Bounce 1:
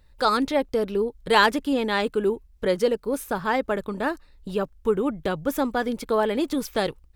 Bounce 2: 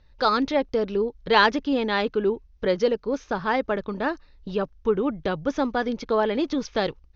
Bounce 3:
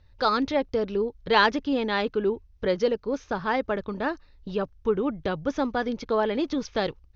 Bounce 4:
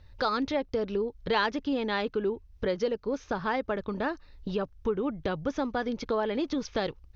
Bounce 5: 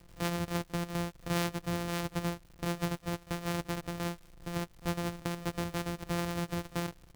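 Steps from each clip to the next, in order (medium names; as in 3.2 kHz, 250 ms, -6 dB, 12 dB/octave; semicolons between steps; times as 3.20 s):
steep low-pass 6.4 kHz 96 dB/octave
peaking EQ 88 Hz +11.5 dB 0.39 oct; trim -2 dB
compression 2:1, threshold -36 dBFS, peak gain reduction 11.5 dB; trim +4 dB
sorted samples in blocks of 256 samples; crackle 150 per s -42 dBFS; pre-echo 39 ms -20 dB; trim -5 dB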